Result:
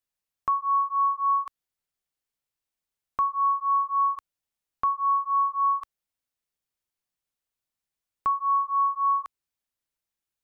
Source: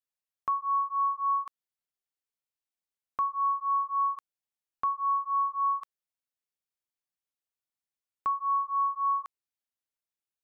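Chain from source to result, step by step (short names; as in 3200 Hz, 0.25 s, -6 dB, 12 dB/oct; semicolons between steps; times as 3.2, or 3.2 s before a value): low shelf 110 Hz +8.5 dB; gain +4 dB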